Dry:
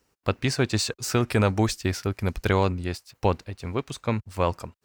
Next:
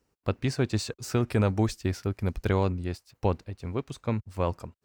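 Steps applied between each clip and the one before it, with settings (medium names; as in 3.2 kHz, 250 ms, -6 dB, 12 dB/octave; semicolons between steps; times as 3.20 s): tilt shelf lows +3.5 dB, about 740 Hz; trim -5 dB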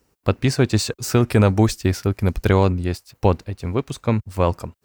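treble shelf 9.8 kHz +6.5 dB; trim +9 dB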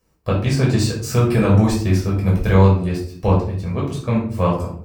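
simulated room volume 590 m³, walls furnished, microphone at 5.7 m; trim -8 dB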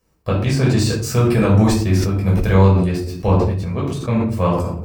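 decay stretcher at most 38 dB/s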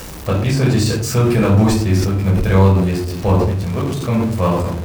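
jump at every zero crossing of -25.5 dBFS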